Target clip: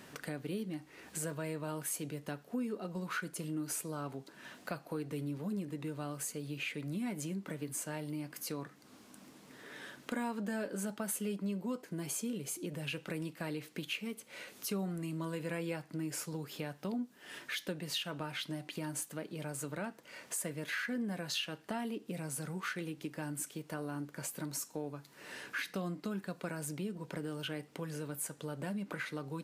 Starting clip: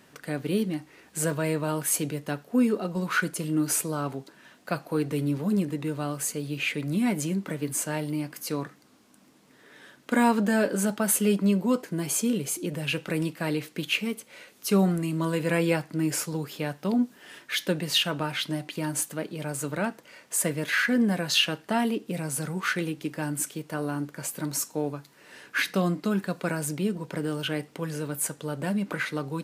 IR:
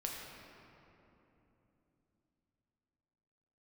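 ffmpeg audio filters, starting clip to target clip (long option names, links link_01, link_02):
-af "acompressor=threshold=-46dB:ratio=2.5,volume=2.5dB"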